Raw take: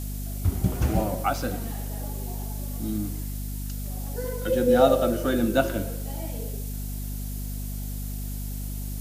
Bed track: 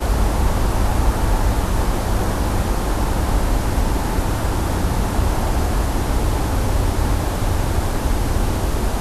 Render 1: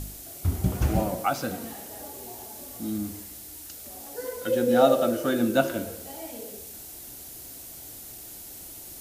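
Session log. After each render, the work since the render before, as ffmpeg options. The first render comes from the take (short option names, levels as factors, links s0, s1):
-af "bandreject=f=50:t=h:w=4,bandreject=f=100:t=h:w=4,bandreject=f=150:t=h:w=4,bandreject=f=200:t=h:w=4,bandreject=f=250:t=h:w=4,bandreject=f=300:t=h:w=4,bandreject=f=350:t=h:w=4,bandreject=f=400:t=h:w=4,bandreject=f=450:t=h:w=4,bandreject=f=500:t=h:w=4"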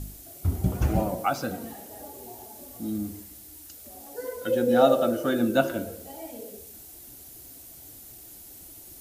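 -af "afftdn=nr=6:nf=-43"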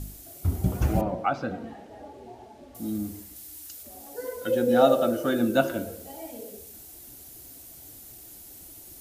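-filter_complex "[0:a]asettb=1/sr,asplit=3[s0][s1][s2];[s0]atrim=end=1.014[s3];[s1]atrim=start=1.01:end=2.75,asetpts=PTS-STARTPTS,afade=t=in:d=0.004:c=qsin,afade=t=out:st=1.736:d=0.004:c=qsin,lowpass=2800[s4];[s2]atrim=start=2.746[s5];[s3][s4]acrossfade=d=0.004:c1=hsin:c2=qsin[s6];[s6][s5]acrossfade=d=0.004:c1=qsin:c2=hsin,asettb=1/sr,asplit=3[s7][s8][s9];[s7]atrim=end=3.364[s10];[s8]atrim=start=3.36:end=3.83,asetpts=PTS-STARTPTS,afade=t=in:d=0.004:c=qsin,afade=t=out:st=0.466:d=0.004:c=qsin,tiltshelf=f=1300:g=-3.5[s11];[s9]atrim=start=3.826[s12];[s10][s11]acrossfade=d=0.004:c1=hsin:c2=qsin[s13];[s13][s12]acrossfade=d=0.004:c1=qsin:c2=hsin"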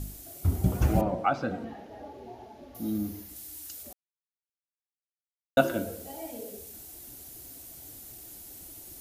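-filter_complex "[0:a]asettb=1/sr,asplit=3[s0][s1][s2];[s0]atrim=end=1.644[s3];[s1]atrim=start=1.64:end=3.29,asetpts=PTS-STARTPTS,afade=t=in:d=0.004:c=qsin,afade=t=out:st=1.646:d=0.004:c=qsin,equalizer=f=8200:t=o:w=0.29:g=-13.5[s4];[s2]atrim=start=3.286[s5];[s3][s4]acrossfade=d=0.004:c1=hsin:c2=qsin[s6];[s6][s5]acrossfade=d=0.004:c1=qsin:c2=hsin,asplit=3[s7][s8][s9];[s7]atrim=end=3.93,asetpts=PTS-STARTPTS,afade=t=out:st=3.926:d=0.004:c=hsin[s10];[s8]atrim=start=3.93:end=5.57,asetpts=PTS-STARTPTS,volume=0[s11];[s9]atrim=start=5.57,asetpts=PTS-STARTPTS,afade=t=in:d=0.004:c=hsin[s12];[s10][s11][s12]concat=n=3:v=0:a=1"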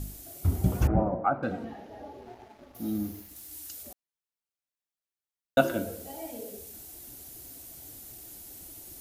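-filter_complex "[0:a]asettb=1/sr,asplit=3[s0][s1][s2];[s0]atrim=end=0.874[s3];[s1]atrim=start=0.87:end=1.43,asetpts=PTS-STARTPTS,afade=t=in:d=0.004:c=qsin,afade=t=out:st=0.556:d=0.004:c=qsin,lowpass=f=1600:w=0.5412,lowpass=f=1600:w=1.3066[s4];[s2]atrim=start=1.426[s5];[s3][s4]acrossfade=d=0.004:c1=hsin:c2=qsin[s6];[s6][s5]acrossfade=d=0.004:c1=qsin:c2=hsin,asettb=1/sr,asplit=3[s7][s8][s9];[s7]atrim=end=2.214[s10];[s8]atrim=start=2.21:end=3.51,asetpts=PTS-STARTPTS,afade=t=in:d=0.004:c=qsin,afade=t=out:st=1.296:d=0.004:c=qsin,aeval=exprs='sgn(val(0))*max(abs(val(0))-0.00211,0)':c=same[s11];[s9]atrim=start=3.506[s12];[s10][s11]acrossfade=d=0.004:c1=hsin:c2=qsin[s13];[s13][s12]acrossfade=d=0.004:c1=qsin:c2=hsin"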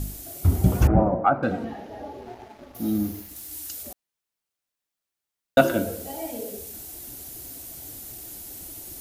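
-af "acontrast=67"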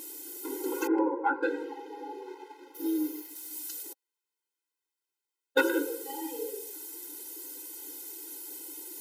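-af "asoftclip=type=hard:threshold=0.422,afftfilt=real='re*eq(mod(floor(b*sr/1024/270),2),1)':imag='im*eq(mod(floor(b*sr/1024/270),2),1)':win_size=1024:overlap=0.75"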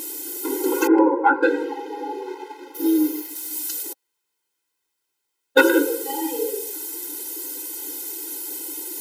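-af "volume=3.55,alimiter=limit=0.794:level=0:latency=1"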